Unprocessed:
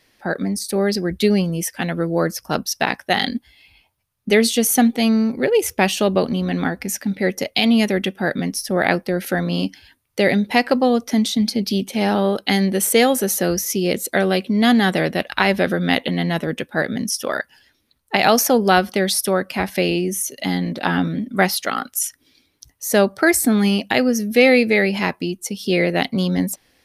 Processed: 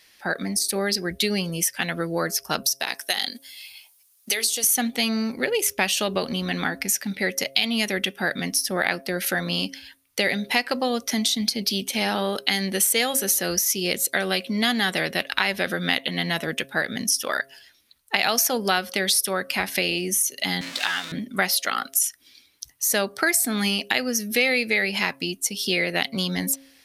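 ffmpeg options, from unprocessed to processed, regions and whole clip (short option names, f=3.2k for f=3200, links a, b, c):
-filter_complex "[0:a]asettb=1/sr,asplit=3[a][b][c];[a]atrim=end=2.644[d];[b]atrim=start=2.64:end=4.64,asetpts=PTS-STARTPTS,afade=t=in:d=0.004:c=qsin,afade=t=out:st=1.996:d=0.004:c=qsin,bass=f=250:g=-13,treble=f=4k:g=14,acrossover=split=450|1200[e][f][g];[e]acompressor=threshold=-33dB:ratio=4[h];[f]acompressor=threshold=-30dB:ratio=4[i];[g]acompressor=threshold=-26dB:ratio=4[j];[h][i][j]amix=inputs=3:normalize=0[k];[c]atrim=start=4.636[l];[d][k]acrossfade=d=0.004:c1=hsin:c2=qsin[m];[m][l]acrossfade=d=0.004:c1=qsin:c2=hsin,asettb=1/sr,asplit=3[n][o][p];[n]atrim=end=20.614[q];[o]atrim=start=20.61:end=21.12,asetpts=PTS-STARTPTS,afade=t=in:d=0.004:c=qsin,afade=t=out:st=0.506:d=0.004:c=qsin,aeval=exprs='val(0)+0.5*0.0596*sgn(val(0))':c=same,bandpass=f=3.3k:t=q:w=0.54[r];[p]atrim=start=21.116[s];[q][r]acrossfade=d=0.004:c1=hsin:c2=qsin[t];[t][s]acrossfade=d=0.004:c1=qsin:c2=hsin,tiltshelf=f=1.1k:g=-7,bandreject=f=135.6:t=h:w=4,bandreject=f=271.2:t=h:w=4,bandreject=f=406.8:t=h:w=4,bandreject=f=542.4:t=h:w=4,bandreject=f=678:t=h:w=4,acompressor=threshold=-21dB:ratio=2.5"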